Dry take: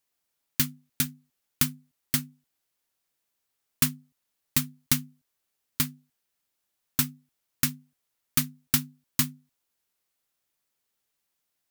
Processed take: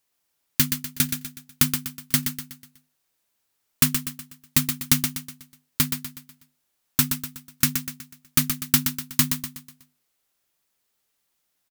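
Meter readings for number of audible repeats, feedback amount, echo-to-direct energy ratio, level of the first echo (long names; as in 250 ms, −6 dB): 4, 43%, −6.0 dB, −7.0 dB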